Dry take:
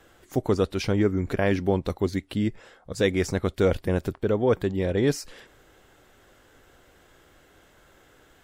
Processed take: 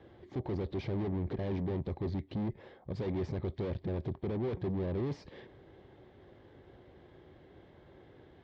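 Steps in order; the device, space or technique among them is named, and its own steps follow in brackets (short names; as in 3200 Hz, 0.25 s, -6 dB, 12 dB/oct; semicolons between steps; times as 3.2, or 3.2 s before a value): guitar amplifier (tube stage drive 38 dB, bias 0.55; tone controls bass +11 dB, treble -3 dB; speaker cabinet 84–3900 Hz, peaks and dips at 370 Hz +8 dB, 560 Hz +3 dB, 840 Hz +3 dB, 1400 Hz -10 dB, 2700 Hz -7 dB); gain -1.5 dB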